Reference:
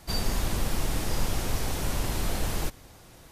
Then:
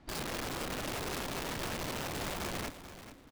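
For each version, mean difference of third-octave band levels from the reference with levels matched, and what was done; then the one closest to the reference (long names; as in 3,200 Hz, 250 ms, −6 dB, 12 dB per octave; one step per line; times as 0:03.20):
4.0 dB: low-pass filter 3,000 Hz 12 dB per octave
parametric band 270 Hz +13 dB 0.46 octaves
wrap-around overflow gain 24.5 dB
on a send: repeating echo 436 ms, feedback 25%, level −12.5 dB
on the sum: level −8.5 dB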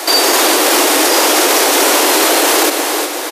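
10.5 dB: Butterworth high-pass 290 Hz 72 dB per octave
on a send: repeating echo 363 ms, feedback 38%, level −14 dB
on the sum: boost into a limiter +32.5 dB
level −1 dB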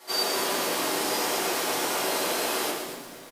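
6.5 dB: high-pass filter 340 Hz 24 dB per octave
on a send: echo with shifted repeats 236 ms, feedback 35%, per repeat −58 Hz, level −10 dB
on the sum: rectangular room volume 54 cubic metres, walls mixed, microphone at 1.7 metres
feedback echo at a low word length 117 ms, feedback 35%, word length 8 bits, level −7 dB
level −1.5 dB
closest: first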